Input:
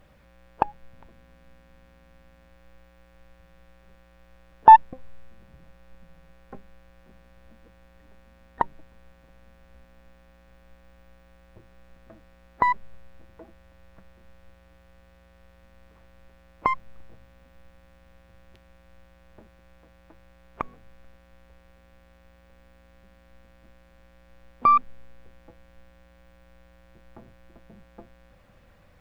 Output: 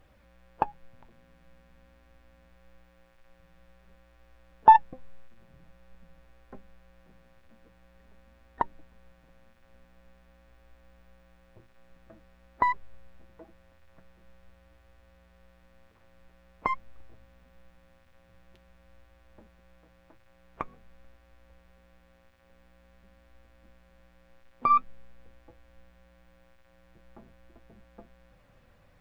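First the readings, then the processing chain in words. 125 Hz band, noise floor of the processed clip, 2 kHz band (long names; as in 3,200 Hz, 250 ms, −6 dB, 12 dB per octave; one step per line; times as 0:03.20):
−4.5 dB, −61 dBFS, −4.0 dB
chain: flanger 0.47 Hz, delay 2.3 ms, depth 6.2 ms, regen −53%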